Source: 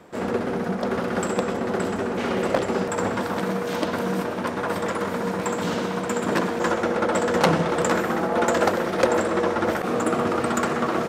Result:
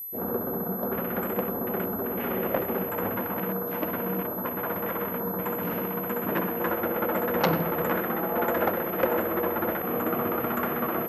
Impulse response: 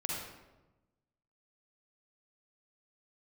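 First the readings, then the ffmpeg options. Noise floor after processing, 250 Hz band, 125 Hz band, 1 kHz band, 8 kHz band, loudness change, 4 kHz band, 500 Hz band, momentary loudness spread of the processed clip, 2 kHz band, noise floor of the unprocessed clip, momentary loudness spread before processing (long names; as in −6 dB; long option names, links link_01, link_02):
−32 dBFS, −5.0 dB, −5.0 dB, −5.0 dB, below −15 dB, −4.0 dB, −10.5 dB, −5.0 dB, 4 LU, −6.0 dB, −29 dBFS, 5 LU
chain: -filter_complex "[0:a]afwtdn=0.0251,aeval=exprs='val(0)+0.0355*sin(2*PI*12000*n/s)':channel_layout=same,asplit=2[link_01][link_02];[1:a]atrim=start_sample=2205[link_03];[link_02][link_03]afir=irnorm=-1:irlink=0,volume=-17dB[link_04];[link_01][link_04]amix=inputs=2:normalize=0,volume=-6dB"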